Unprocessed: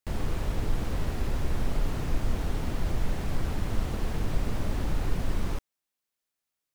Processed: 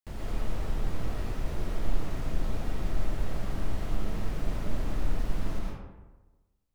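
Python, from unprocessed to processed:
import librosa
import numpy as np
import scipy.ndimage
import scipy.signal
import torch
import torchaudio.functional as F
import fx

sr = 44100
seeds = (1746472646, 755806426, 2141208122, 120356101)

y = fx.rev_freeverb(x, sr, rt60_s=1.2, hf_ratio=0.5, predelay_ms=80, drr_db=-3.0)
y = y * librosa.db_to_amplitude(-8.0)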